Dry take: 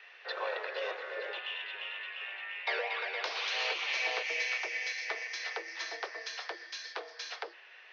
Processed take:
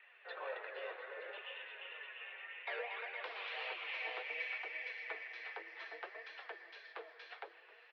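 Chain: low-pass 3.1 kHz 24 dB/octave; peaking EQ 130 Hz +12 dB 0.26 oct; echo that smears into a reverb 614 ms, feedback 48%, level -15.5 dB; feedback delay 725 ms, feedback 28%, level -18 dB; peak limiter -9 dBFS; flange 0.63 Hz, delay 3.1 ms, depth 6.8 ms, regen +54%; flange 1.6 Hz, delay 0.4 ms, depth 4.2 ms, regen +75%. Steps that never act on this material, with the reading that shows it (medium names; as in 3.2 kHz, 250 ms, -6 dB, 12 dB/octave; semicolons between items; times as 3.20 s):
peaking EQ 130 Hz: input has nothing below 300 Hz; peak limiter -9 dBFS: peak at its input -20.5 dBFS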